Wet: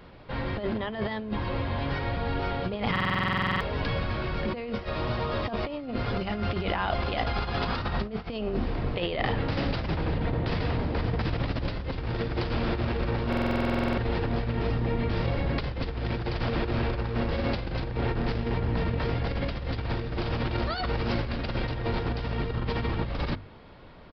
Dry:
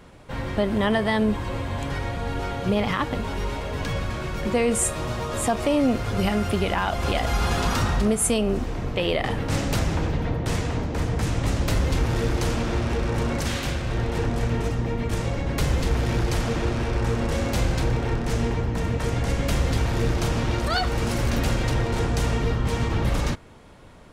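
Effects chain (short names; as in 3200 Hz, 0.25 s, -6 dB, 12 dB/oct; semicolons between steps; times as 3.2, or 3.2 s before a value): notches 50/100/150/200/250/300 Hz; negative-ratio compressor -25 dBFS, ratio -0.5; downsampling 11025 Hz; stuck buffer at 2.91/13.28, samples 2048, times 14; gain -2.5 dB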